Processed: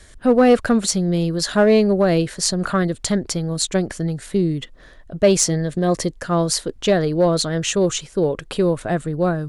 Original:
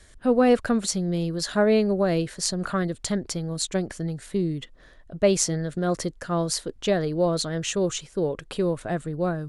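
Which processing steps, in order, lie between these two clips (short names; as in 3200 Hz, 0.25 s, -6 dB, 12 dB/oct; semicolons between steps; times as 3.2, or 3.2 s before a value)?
5.5–6.21 notch 1400 Hz, Q 5.3; in parallel at -5 dB: hard clip -17.5 dBFS, distortion -14 dB; on the sum: gain +2.5 dB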